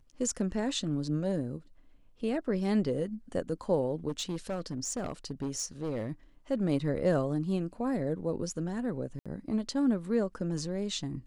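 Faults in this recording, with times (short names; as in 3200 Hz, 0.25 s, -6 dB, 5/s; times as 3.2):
4.08–6.11 clipped -29 dBFS
9.19–9.26 gap 66 ms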